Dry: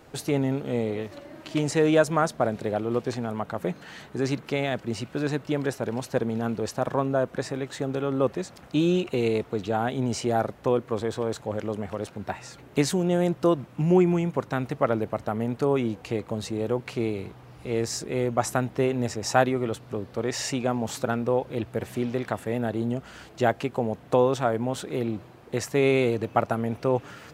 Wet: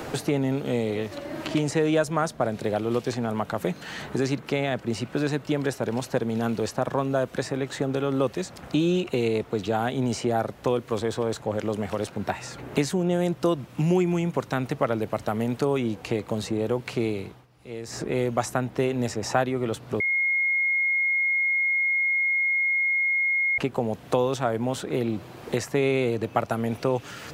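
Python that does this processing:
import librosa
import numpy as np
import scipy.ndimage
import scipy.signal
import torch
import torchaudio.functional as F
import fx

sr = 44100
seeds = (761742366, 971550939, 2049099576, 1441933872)

y = fx.edit(x, sr, fx.fade_down_up(start_s=17.11, length_s=1.1, db=-23.0, fade_s=0.36),
    fx.bleep(start_s=20.0, length_s=3.58, hz=2150.0, db=-24.0), tone=tone)
y = fx.band_squash(y, sr, depth_pct=70)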